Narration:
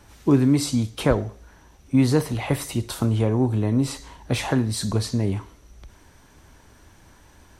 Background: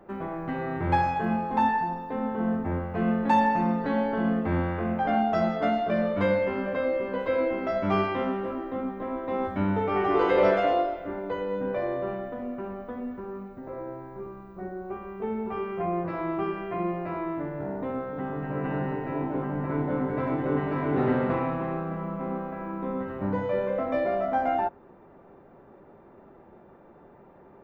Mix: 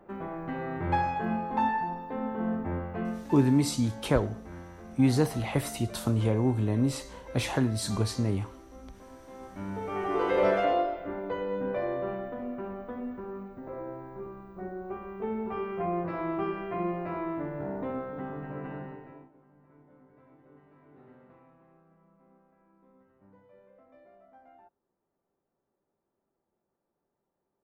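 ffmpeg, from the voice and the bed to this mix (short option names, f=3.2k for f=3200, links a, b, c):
-filter_complex "[0:a]adelay=3050,volume=-5dB[a];[1:a]volume=12.5dB,afade=t=out:st=2.88:d=0.4:silence=0.188365,afade=t=in:st=9.38:d=1.27:silence=0.158489,afade=t=out:st=17.84:d=1.47:silence=0.0354813[b];[a][b]amix=inputs=2:normalize=0"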